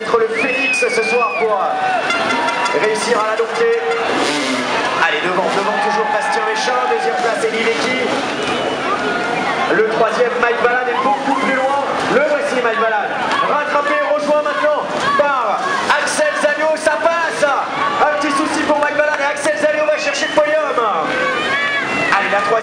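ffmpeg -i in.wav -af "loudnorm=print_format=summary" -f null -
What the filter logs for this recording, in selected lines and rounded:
Input Integrated:    -15.5 LUFS
Input True Peak:      -3.4 dBTP
Input LRA:             0.8 LU
Input Threshold:     -25.5 LUFS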